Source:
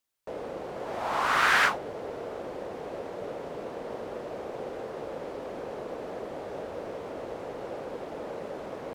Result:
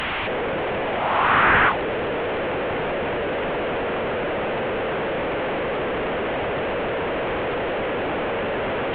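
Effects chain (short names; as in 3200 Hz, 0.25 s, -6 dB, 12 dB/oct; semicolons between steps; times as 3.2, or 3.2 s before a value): delta modulation 16 kbps, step -26.5 dBFS; gain +8 dB; SBC 192 kbps 48000 Hz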